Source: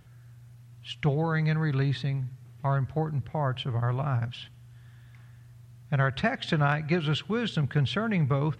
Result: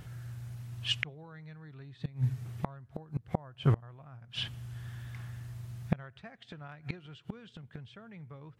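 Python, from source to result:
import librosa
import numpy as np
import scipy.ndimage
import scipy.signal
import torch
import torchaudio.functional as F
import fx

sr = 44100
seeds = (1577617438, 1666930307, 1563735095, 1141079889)

y = fx.gate_flip(x, sr, shuts_db=-23.0, range_db=-30)
y = y * librosa.db_to_amplitude(7.5)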